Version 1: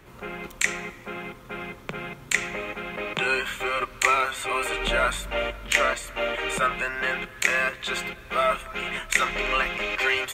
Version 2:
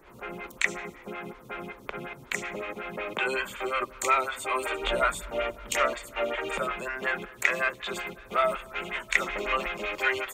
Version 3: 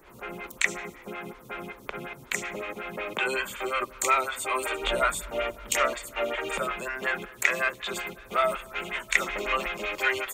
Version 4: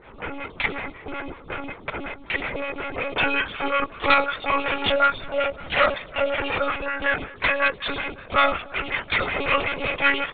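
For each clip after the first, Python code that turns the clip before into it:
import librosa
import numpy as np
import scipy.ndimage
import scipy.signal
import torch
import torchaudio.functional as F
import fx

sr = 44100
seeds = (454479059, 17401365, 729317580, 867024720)

y1 = fx.stagger_phaser(x, sr, hz=5.4)
y2 = fx.high_shelf(y1, sr, hz=5500.0, db=7.0)
y3 = (np.mod(10.0 ** (13.0 / 20.0) * y2 + 1.0, 2.0) - 1.0) / 10.0 ** (13.0 / 20.0)
y3 = fx.lpc_monotone(y3, sr, seeds[0], pitch_hz=280.0, order=16)
y3 = y3 * librosa.db_to_amplitude(6.0)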